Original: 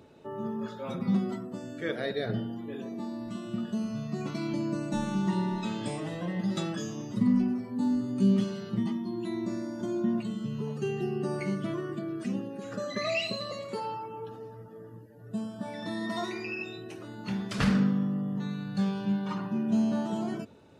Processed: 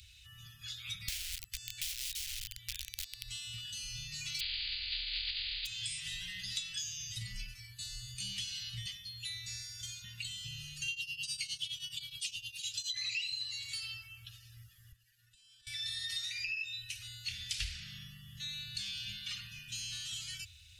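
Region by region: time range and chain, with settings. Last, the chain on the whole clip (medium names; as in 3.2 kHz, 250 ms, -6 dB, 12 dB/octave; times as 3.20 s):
1.08–3.25 s: peaking EQ 240 Hz -8 dB 0.27 oct + integer overflow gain 32.5 dB
4.39–5.65 s: spectral contrast reduction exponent 0.14 + Chebyshev low-pass 4.8 kHz, order 10
10.88–12.94 s: tremolo triangle 9.6 Hz, depth 90% + resonant high shelf 2.4 kHz +9 dB, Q 3
14.92–15.67 s: high-pass 280 Hz + treble shelf 7.8 kHz -11 dB + compression 12:1, threshold -52 dBFS
whole clip: inverse Chebyshev band-stop 240–820 Hz, stop band 70 dB; compression 6:1, threshold -49 dBFS; trim +13 dB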